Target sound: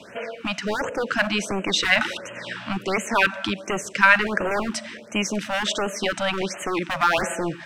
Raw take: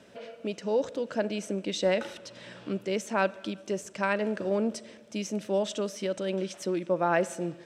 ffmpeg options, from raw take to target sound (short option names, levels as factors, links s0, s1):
-filter_complex "[0:a]equalizer=f=1800:w=0.59:g=10,acrossover=split=110|890|3000[s0][s1][s2][s3];[s1]aeval=exprs='0.0398*(abs(mod(val(0)/0.0398+3,4)-2)-1)':c=same[s4];[s0][s4][s2][s3]amix=inputs=4:normalize=0,afftfilt=real='re*(1-between(b*sr/1024,370*pow(4600/370,0.5+0.5*sin(2*PI*1.4*pts/sr))/1.41,370*pow(4600/370,0.5+0.5*sin(2*PI*1.4*pts/sr))*1.41))':imag='im*(1-between(b*sr/1024,370*pow(4600/370,0.5+0.5*sin(2*PI*1.4*pts/sr))/1.41,370*pow(4600/370,0.5+0.5*sin(2*PI*1.4*pts/sr))*1.41))':win_size=1024:overlap=0.75,volume=2.51"